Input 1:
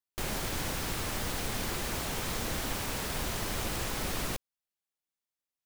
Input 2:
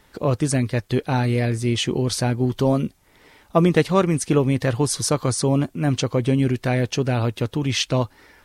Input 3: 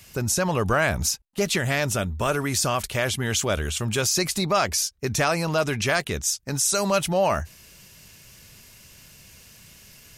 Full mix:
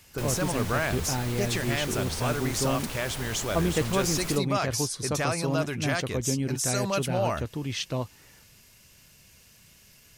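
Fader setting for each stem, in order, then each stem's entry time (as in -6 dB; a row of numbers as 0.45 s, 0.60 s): -3.0 dB, -9.5 dB, -6.5 dB; 0.00 s, 0.00 s, 0.00 s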